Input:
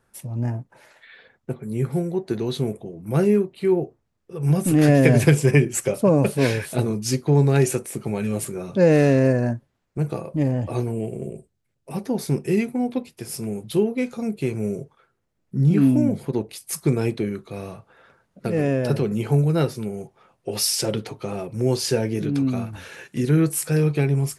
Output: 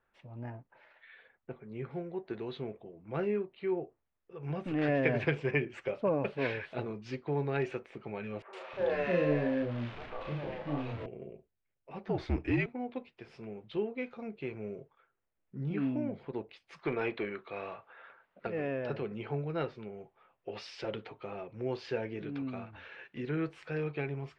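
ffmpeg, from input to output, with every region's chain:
-filter_complex "[0:a]asettb=1/sr,asplit=3[s0][s1][s2];[s0]atrim=end=8.424[s3];[s1]atrim=start=8.42:end=11.06,asetpts=PTS-STARTPTS,afade=t=in:d=0.004:c=qsin,afade=t=out:st=2.636:d=0.004:c=qsin,aeval=exprs='val(0)+0.5*0.0398*sgn(val(0))':c=same,asplit=2[s4][s5];[s5]adelay=34,volume=0.708[s6];[s4][s6]amix=inputs=2:normalize=0,atrim=end_sample=116424,acrossover=split=490|1500[s7][s8][s9];[s9]adelay=110[s10];[s7]adelay=310[s11];[s11][s8][s10]amix=inputs=3:normalize=0,atrim=end_sample=116424[s12];[s2]atrim=start=11.056[s13];[s3][s12]acrossfade=d=0.004:c1=hsin:c2=qsin[s14];[s14][s13]acrossfade=d=0.004:c1=qsin:c2=hsin,asettb=1/sr,asplit=3[s15][s16][s17];[s15]atrim=end=12.074[s18];[s16]atrim=start=12.07:end=12.66,asetpts=PTS-STARTPTS,afade=t=in:d=0.004:c=qsin,afade=t=out:st=0.586:d=0.004:c=qsin,acontrast=83,afreqshift=-68[s19];[s17]atrim=start=12.656[s20];[s18][s19]acrossfade=d=0.004:c1=hsin:c2=qsin[s21];[s21][s20]acrossfade=d=0.004:c1=qsin:c2=hsin,asettb=1/sr,asplit=3[s22][s23][s24];[s22]atrim=end=16.794[s25];[s23]atrim=start=16.79:end=18.47,asetpts=PTS-STARTPTS,afade=t=in:d=0.004:c=qsin,afade=t=out:st=1.676:d=0.004:c=qsin,asplit=2[s26][s27];[s27]highpass=f=720:p=1,volume=5.62,asoftclip=type=tanh:threshold=0.398[s28];[s26][s28]amix=inputs=2:normalize=0,lowpass=f=5200:p=1,volume=0.501,acrossover=split=5900[s29][s30];[s30]acompressor=threshold=0.00251:ratio=4:attack=1:release=60[s31];[s29][s31]amix=inputs=2:normalize=0,highshelf=f=8500:g=-5[s32];[s24]atrim=start=18.466[s33];[s25][s32]acrossfade=d=0.004:c1=hsin:c2=qsin[s34];[s34][s33]acrossfade=d=0.004:c1=qsin:c2=hsin,lowpass=f=3100:w=0.5412,lowpass=f=3100:w=1.3066,equalizer=f=140:w=0.45:g=-11.5,volume=0.422"

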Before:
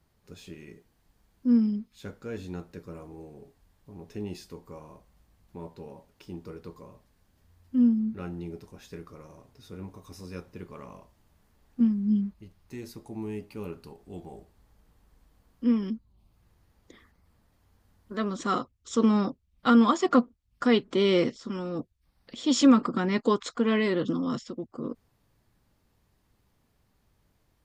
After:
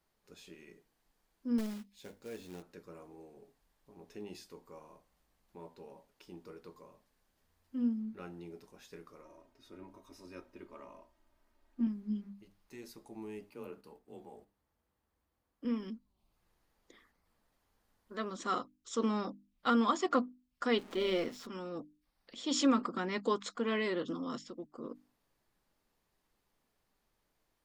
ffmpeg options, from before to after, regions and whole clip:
-filter_complex "[0:a]asettb=1/sr,asplit=3[s0][s1][s2];[s0]atrim=end=1.584[s3];[s1]atrim=start=1.58:end=2.63,asetpts=PTS-STARTPTS,afade=t=in:d=0.004:c=qsin,afade=t=out:st=1.046:d=0.004:c=qsin,equalizer=f=1300:t=o:w=0.44:g=-11.5,aeval=exprs='clip(val(0),-1,0.0422)':c=same,acrusher=bits=4:mode=log:mix=0:aa=0.000001[s4];[s2]atrim=start=2.626[s5];[s3][s4]acrossfade=d=0.004:c1=hsin:c2=qsin[s6];[s6][s5]acrossfade=d=0.004:c1=qsin:c2=hsin,asettb=1/sr,asplit=3[s7][s8][s9];[s7]atrim=end=9.214[s10];[s8]atrim=start=9.21:end=11.87,asetpts=PTS-STARTPTS,afade=t=in:d=0.004:c=qsin,afade=t=out:st=2.656:d=0.004:c=qsin,highshelf=f=3500:g=-8.5,aecho=1:1:3.2:0.67,atrim=end_sample=117306[s11];[s9]atrim=start=11.866[s12];[s10][s11]acrossfade=d=0.004:c1=hsin:c2=qsin[s13];[s13][s12]acrossfade=d=0.004:c1=qsin:c2=hsin,asettb=1/sr,asplit=3[s14][s15][s16];[s14]atrim=end=13.504[s17];[s15]atrim=start=13.5:end=15.65,asetpts=PTS-STARTPTS,afade=t=in:d=0.004:c=qsin,afade=t=out:st=2.146:d=0.004:c=qsin,agate=range=0.447:threshold=0.002:ratio=16:release=100:detection=peak,equalizer=f=5800:w=0.53:g=-4,afreqshift=27[s18];[s16]atrim=start=15.646[s19];[s17][s18]acrossfade=d=0.004:c1=hsin:c2=qsin[s20];[s20][s19]acrossfade=d=0.004:c1=qsin:c2=hsin,asettb=1/sr,asplit=3[s21][s22][s23];[s21]atrim=end=20.784[s24];[s22]atrim=start=20.78:end=21.47,asetpts=PTS-STARTPTS,afade=t=in:d=0.004:c=qsin,afade=t=out:st=0.686:d=0.004:c=qsin,aeval=exprs='val(0)+0.5*0.0126*sgn(val(0))':c=same,bass=f=250:g=0,treble=f=4000:g=-4,tremolo=f=170:d=0.462[s25];[s23]atrim=start=21.466[s26];[s24][s25]acrossfade=d=0.004:c1=hsin:c2=qsin[s27];[s27][s26]acrossfade=d=0.004:c1=qsin:c2=hsin,equalizer=f=84:t=o:w=2.3:g=-13.5,bandreject=f=50:t=h:w=6,bandreject=f=100:t=h:w=6,bandreject=f=150:t=h:w=6,bandreject=f=200:t=h:w=6,bandreject=f=250:t=h:w=6,bandreject=f=300:t=h:w=6,volume=0.531"

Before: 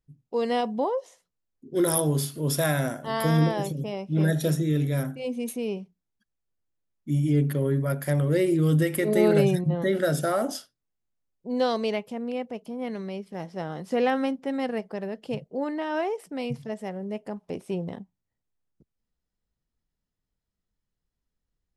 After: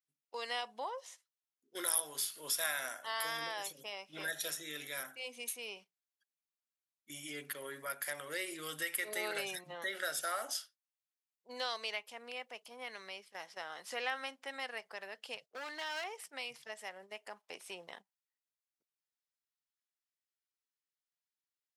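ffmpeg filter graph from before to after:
-filter_complex "[0:a]asettb=1/sr,asplit=3[s0][s1][s2];[s0]atrim=end=15.384[s3];[s1]atrim=start=15.38:end=16.04,asetpts=PTS-STARTPTS,afade=t=in:d=0.004:c=qsin,afade=t=out:st=0.656:d=0.004:c=qsin,agate=range=0.251:threshold=0.00355:ratio=16:release=100:detection=peak,equalizer=f=4900:w=1.1:g=7.5,asoftclip=type=hard:threshold=0.0447[s4];[s2]atrim=start=16.036[s5];[s3][s4]acrossfade=d=0.004:c1=hsin:c2=qsin[s6];[s6][s5]acrossfade=d=0.004:c1=qsin:c2=hsin,highpass=1400,agate=range=0.355:threshold=0.00158:ratio=16:detection=peak,acompressor=threshold=0.00398:ratio=1.5,volume=1.5"

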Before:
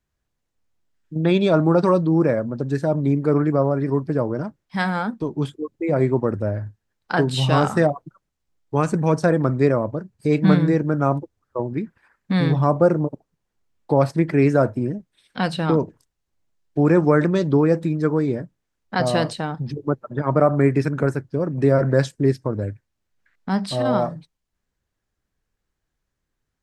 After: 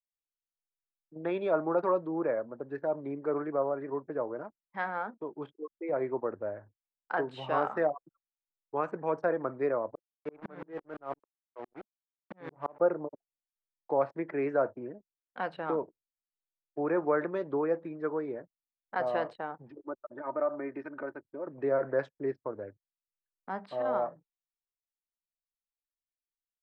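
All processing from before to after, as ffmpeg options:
-filter_complex "[0:a]asettb=1/sr,asplit=3[s0][s1][s2];[s0]atrim=end=9.954[s3];[s1]atrim=start=9.95:end=12.8,asetpts=PTS-STARTPTS,afade=t=in:d=0.004:c=qsin,afade=t=out:st=2.846:d=0.004:c=qsin,aeval=exprs='val(0)*gte(abs(val(0)),0.0531)':c=same,aeval=exprs='val(0)*pow(10,-31*if(lt(mod(-5.9*n/s,1),2*abs(-5.9)/1000),1-mod(-5.9*n/s,1)/(2*abs(-5.9)/1000),(mod(-5.9*n/s,1)-2*abs(-5.9)/1000)/(1-2*abs(-5.9)/1000))/20)':c=same[s4];[s2]atrim=start=12.796[s5];[s3][s4]acrossfade=d=0.004:c1=hsin:c2=qsin[s6];[s6][s5]acrossfade=d=0.004:c1=qsin:c2=hsin,asettb=1/sr,asplit=3[s7][s8][s9];[s7]atrim=end=19.704[s10];[s8]atrim=start=19.7:end=21.47,asetpts=PTS-STARTPTS,afade=t=in:d=0.004:c=qsin,afade=t=out:st=1.766:d=0.004:c=qsin,acompressor=threshold=0.0355:ratio=1.5:attack=3.2:release=140:knee=1:detection=peak,aecho=1:1:3.3:0.59,atrim=end_sample=78057[s11];[s9]atrim=start=21.466[s12];[s10][s11]acrossfade=d=0.004:c1=hsin:c2=qsin[s13];[s13][s12]acrossfade=d=0.004:c1=qsin:c2=hsin,aemphasis=mode=reproduction:type=75kf,anlmdn=0.251,acrossover=split=370 2600:gain=0.0794 1 0.126[s14][s15][s16];[s14][s15][s16]amix=inputs=3:normalize=0,volume=0.447"

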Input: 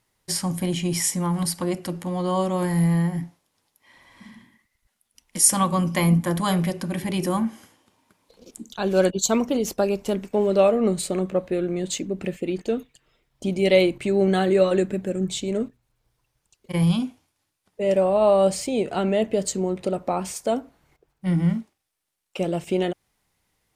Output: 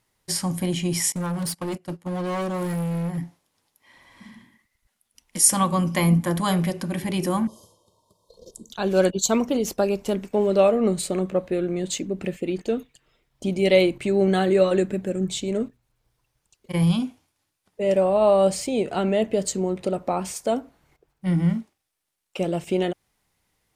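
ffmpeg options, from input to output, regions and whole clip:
-filter_complex "[0:a]asettb=1/sr,asplit=3[s0][s1][s2];[s0]atrim=end=1.124[s3];[s1]atrim=start=1.12:end=3.18,asetpts=PTS-STARTPTS,afade=t=in:d=0.004:c=qsin,afade=t=out:st=2.056:d=0.004:c=qsin,agate=range=0.112:threshold=0.0282:ratio=16:release=100:detection=peak,volume=16.8,asoftclip=hard,volume=0.0596[s4];[s2]atrim=start=3.176[s5];[s3][s4]acrossfade=d=0.004:c1=hsin:c2=qsin[s6];[s6][s5]acrossfade=d=0.004:c1=qsin:c2=hsin,asettb=1/sr,asplit=3[s7][s8][s9];[s7]atrim=end=7.474[s10];[s8]atrim=start=7.47:end=8.7,asetpts=PTS-STARTPTS,afade=t=in:d=0.004:c=qsin,afade=t=out:st=1.226:d=0.004:c=qsin,asuperstop=centerf=1900:order=8:qfactor=0.75,highshelf=f=7900:g=-4,aecho=1:1:1.9:0.79,atrim=end_sample=54243[s11];[s9]atrim=start=8.696[s12];[s10][s11]acrossfade=d=0.004:c1=hsin:c2=qsin[s13];[s13][s12]acrossfade=d=0.004:c1=qsin:c2=hsin"

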